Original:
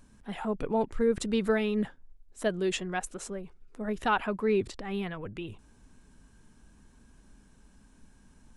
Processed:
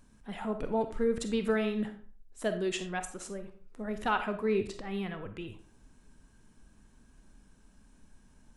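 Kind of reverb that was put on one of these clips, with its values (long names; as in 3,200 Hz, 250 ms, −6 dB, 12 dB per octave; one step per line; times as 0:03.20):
comb and all-pass reverb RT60 0.44 s, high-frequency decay 0.7×, pre-delay 5 ms, DRR 7.5 dB
level −3 dB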